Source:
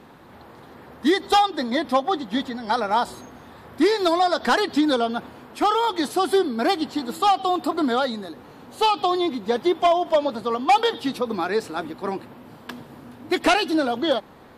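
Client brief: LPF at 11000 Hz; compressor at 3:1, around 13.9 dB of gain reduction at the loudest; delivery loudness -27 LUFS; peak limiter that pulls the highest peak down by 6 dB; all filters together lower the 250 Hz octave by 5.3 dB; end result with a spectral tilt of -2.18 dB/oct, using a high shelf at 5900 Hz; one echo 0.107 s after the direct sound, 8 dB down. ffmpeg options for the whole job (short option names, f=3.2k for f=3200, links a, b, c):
-af "lowpass=11k,equalizer=f=250:t=o:g=-7.5,highshelf=f=5.9k:g=-6,acompressor=threshold=-34dB:ratio=3,alimiter=level_in=2.5dB:limit=-24dB:level=0:latency=1,volume=-2.5dB,aecho=1:1:107:0.398,volume=9.5dB"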